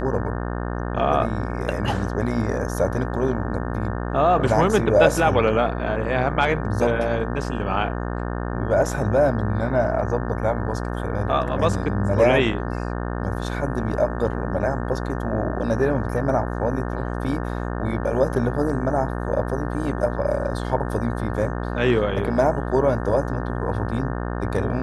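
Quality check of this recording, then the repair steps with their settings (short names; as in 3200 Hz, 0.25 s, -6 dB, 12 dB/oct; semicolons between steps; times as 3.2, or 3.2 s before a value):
buzz 60 Hz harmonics 30 -27 dBFS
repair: de-hum 60 Hz, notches 30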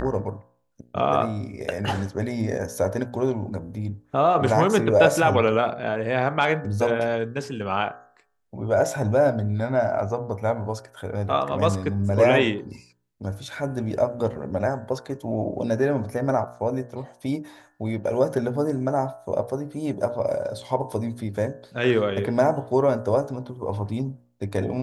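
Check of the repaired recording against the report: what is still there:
none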